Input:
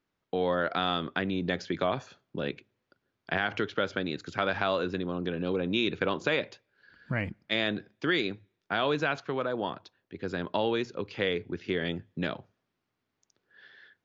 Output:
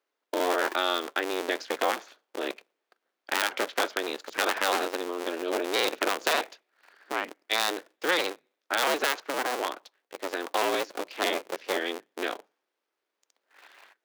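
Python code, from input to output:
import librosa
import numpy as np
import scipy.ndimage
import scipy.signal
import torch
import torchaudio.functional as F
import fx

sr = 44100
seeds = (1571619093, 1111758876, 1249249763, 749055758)

p1 = fx.cycle_switch(x, sr, every=2, mode='inverted')
p2 = scipy.signal.sosfilt(scipy.signal.butter(4, 330.0, 'highpass', fs=sr, output='sos'), p1)
p3 = np.sign(p2) * np.maximum(np.abs(p2) - 10.0 ** (-50.0 / 20.0), 0.0)
y = p2 + F.gain(torch.from_numpy(p3), -9.5).numpy()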